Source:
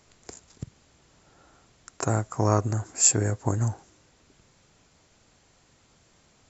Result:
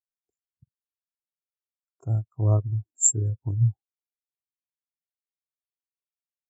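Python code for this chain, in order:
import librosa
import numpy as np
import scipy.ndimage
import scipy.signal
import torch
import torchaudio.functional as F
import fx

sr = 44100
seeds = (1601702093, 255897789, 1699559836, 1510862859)

y = fx.notch(x, sr, hz=1900.0, q=5.3)
y = fx.spectral_expand(y, sr, expansion=2.5)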